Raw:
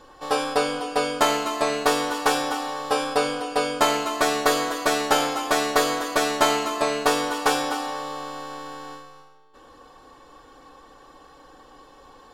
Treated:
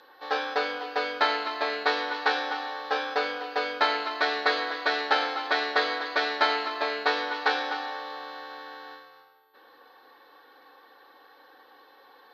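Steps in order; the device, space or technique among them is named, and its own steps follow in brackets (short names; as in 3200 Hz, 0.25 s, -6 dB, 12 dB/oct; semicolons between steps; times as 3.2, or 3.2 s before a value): toy sound module (decimation joined by straight lines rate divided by 4×; pulse-width modulation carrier 13000 Hz; speaker cabinet 560–4700 Hz, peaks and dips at 630 Hz -7 dB, 1100 Hz -7 dB, 1700 Hz +4 dB, 2800 Hz -5 dB, 4200 Hz +6 dB)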